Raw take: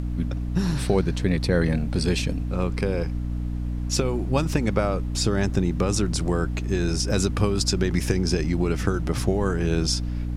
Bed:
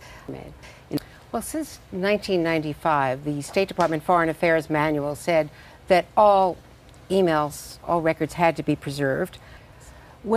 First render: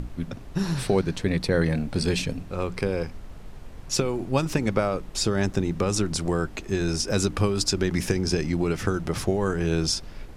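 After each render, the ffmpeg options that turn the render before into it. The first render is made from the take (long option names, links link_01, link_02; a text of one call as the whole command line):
ffmpeg -i in.wav -af "bandreject=frequency=60:width_type=h:width=6,bandreject=frequency=120:width_type=h:width=6,bandreject=frequency=180:width_type=h:width=6,bandreject=frequency=240:width_type=h:width=6,bandreject=frequency=300:width_type=h:width=6" out.wav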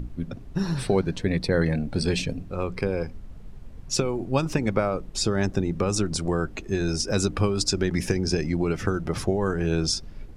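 ffmpeg -i in.wav -af "afftdn=noise_reduction=9:noise_floor=-41" out.wav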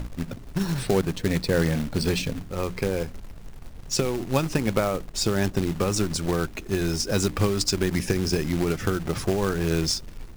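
ffmpeg -i in.wav -af "acrusher=bits=3:mode=log:mix=0:aa=0.000001" out.wav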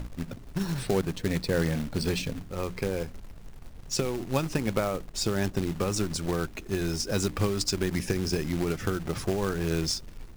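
ffmpeg -i in.wav -af "volume=-4dB" out.wav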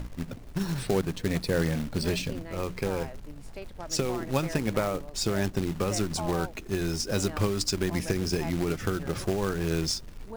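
ffmpeg -i in.wav -i bed.wav -filter_complex "[1:a]volume=-20.5dB[link_01];[0:a][link_01]amix=inputs=2:normalize=0" out.wav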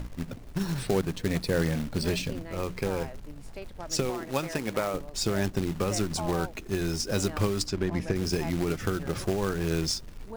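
ffmpeg -i in.wav -filter_complex "[0:a]asettb=1/sr,asplit=3[link_01][link_02][link_03];[link_01]atrim=end=4.104[link_04];[link_02]atrim=start=4.1:end=4.94,asetpts=PTS-STARTPTS,afade=type=in:duration=0.004:curve=qsin,afade=type=out:start_time=0.836:duration=0.004:curve=qsin,lowshelf=frequency=170:gain=-11.5[link_05];[link_03]atrim=start=4.936[link_06];[link_04][link_05]acrossfade=duration=0.004:curve1=hsin:curve2=qsin[link_07];[link_07][link_06]acrossfade=duration=0.004:curve1=qsin:curve2=hsin,asplit=3[link_08][link_09][link_10];[link_08]afade=type=out:start_time=7.65:duration=0.02[link_11];[link_09]lowpass=frequency=2000:poles=1,afade=type=in:start_time=7.65:duration=0.02,afade=type=out:start_time=8.15:duration=0.02[link_12];[link_10]afade=type=in:start_time=8.15:duration=0.02[link_13];[link_11][link_12][link_13]amix=inputs=3:normalize=0" out.wav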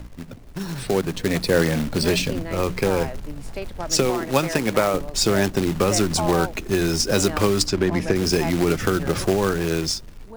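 ffmpeg -i in.wav -filter_complex "[0:a]acrossover=split=210[link_01][link_02];[link_01]alimiter=level_in=8dB:limit=-24dB:level=0:latency=1,volume=-8dB[link_03];[link_03][link_02]amix=inputs=2:normalize=0,dynaudnorm=framelen=400:gausssize=5:maxgain=10dB" out.wav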